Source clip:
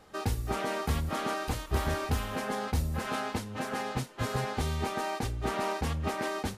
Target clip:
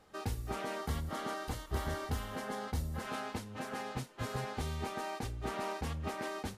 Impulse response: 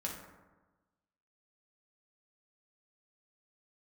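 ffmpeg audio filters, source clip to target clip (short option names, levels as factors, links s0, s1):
-filter_complex "[0:a]asettb=1/sr,asplit=3[s0][s1][s2];[s0]atrim=end=0.764[s3];[s1]atrim=start=0.76:end=3.03,asetpts=PTS-STARTPTS,afade=t=in:d=0.004:c=qsin,afade=t=out:st=2.266:d=0.004:c=qsin,bandreject=f=2500:w=10[s4];[s2]atrim=start=3.026[s5];[s3][s4]acrossfade=d=0.004:c1=hsin:c2=qsin[s6];[s6][s5]acrossfade=d=0.004:c1=qsin:c2=hsin,volume=0.473"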